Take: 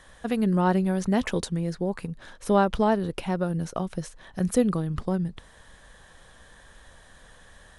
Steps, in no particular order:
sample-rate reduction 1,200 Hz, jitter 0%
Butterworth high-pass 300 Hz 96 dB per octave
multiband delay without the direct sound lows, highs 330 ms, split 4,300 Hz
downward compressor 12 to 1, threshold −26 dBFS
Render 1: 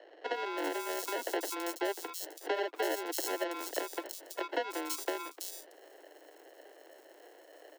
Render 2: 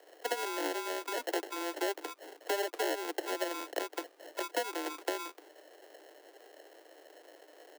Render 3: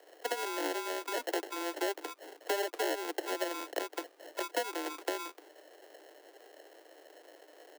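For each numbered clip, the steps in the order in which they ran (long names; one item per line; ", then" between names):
sample-rate reduction, then multiband delay without the direct sound, then downward compressor, then Butterworth high-pass
multiband delay without the direct sound, then downward compressor, then sample-rate reduction, then Butterworth high-pass
multiband delay without the direct sound, then sample-rate reduction, then downward compressor, then Butterworth high-pass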